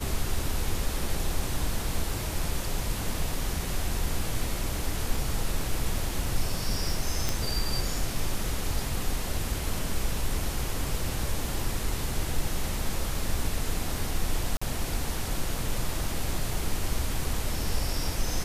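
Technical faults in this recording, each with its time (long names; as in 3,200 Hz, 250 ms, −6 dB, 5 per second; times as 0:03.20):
0:07.29: click
0:14.57–0:14.62: drop-out 45 ms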